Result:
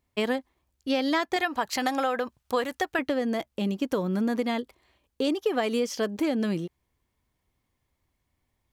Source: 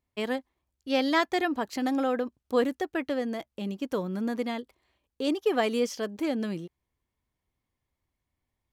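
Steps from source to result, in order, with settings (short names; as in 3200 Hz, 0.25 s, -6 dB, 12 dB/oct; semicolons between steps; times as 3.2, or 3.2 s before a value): 1.36–2.99 EQ curve 160 Hz 0 dB, 270 Hz -9 dB, 890 Hz +4 dB; compressor 6:1, threshold -29 dBFS, peak gain reduction 9.5 dB; gain +6.5 dB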